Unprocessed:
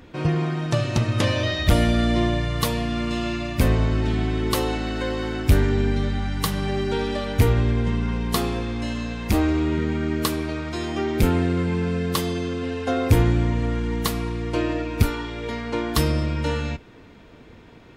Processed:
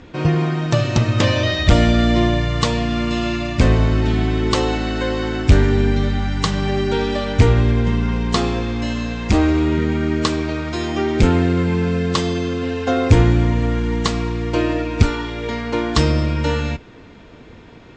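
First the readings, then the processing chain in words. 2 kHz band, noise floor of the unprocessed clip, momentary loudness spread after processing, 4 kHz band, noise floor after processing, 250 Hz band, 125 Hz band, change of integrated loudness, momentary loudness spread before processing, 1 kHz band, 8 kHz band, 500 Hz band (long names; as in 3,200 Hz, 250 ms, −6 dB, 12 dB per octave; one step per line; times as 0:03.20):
+5.0 dB, −47 dBFS, 8 LU, +5.0 dB, −42 dBFS, +5.0 dB, +5.0 dB, +5.0 dB, 8 LU, +5.0 dB, +2.0 dB, +5.0 dB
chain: Butterworth low-pass 7,800 Hz 72 dB per octave
level +5 dB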